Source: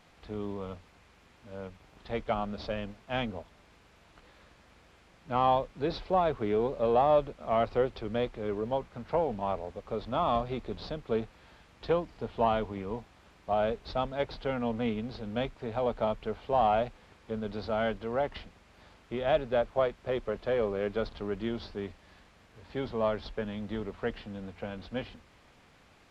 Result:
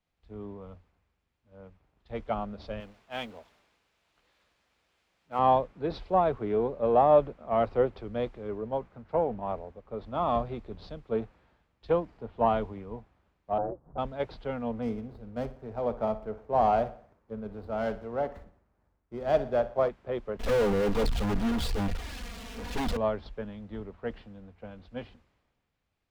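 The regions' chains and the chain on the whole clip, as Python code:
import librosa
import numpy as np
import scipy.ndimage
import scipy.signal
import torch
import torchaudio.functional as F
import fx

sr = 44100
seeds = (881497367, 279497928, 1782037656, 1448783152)

y = fx.chain(x, sr, fx.law_mismatch(coded='mu'),
    fx.low_shelf(hz=280.0, db=-11.5), at=(2.8, 5.39))
y = fx.chain(y, sr, fx.lowpass(hz=1100.0, slope=24),
    fx.ring_mod(carrier_hz=99.0), at=(13.58, 13.98))
y = fx.chain(y, sr, fx.median_filter(points=15),
    fx.echo_feedback(ms=60, feedback_pct=55, wet_db=-14.0), at=(14.82, 19.89))
y = fx.chain(y, sr, fx.lower_of_two(delay_ms=4.2),
    fx.env_flanger(rest_ms=4.9, full_db=-26.5),
    fx.power_curve(exponent=0.35), at=(20.39, 22.97))
y = fx.high_shelf(y, sr, hz=2300.0, db=-9.0)
y = fx.band_widen(y, sr, depth_pct=70)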